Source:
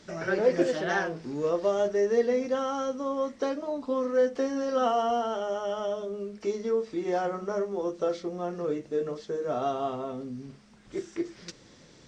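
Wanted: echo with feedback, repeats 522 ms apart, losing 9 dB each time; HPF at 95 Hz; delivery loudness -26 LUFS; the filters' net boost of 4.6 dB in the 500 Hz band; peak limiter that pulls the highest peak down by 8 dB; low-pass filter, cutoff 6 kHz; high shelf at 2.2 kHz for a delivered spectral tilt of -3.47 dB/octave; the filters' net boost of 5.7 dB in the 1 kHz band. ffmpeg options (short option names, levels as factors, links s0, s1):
-af "highpass=95,lowpass=6000,equalizer=f=500:t=o:g=3.5,equalizer=f=1000:t=o:g=5.5,highshelf=f=2200:g=6.5,alimiter=limit=0.178:level=0:latency=1,aecho=1:1:522|1044|1566|2088:0.355|0.124|0.0435|0.0152,volume=0.944"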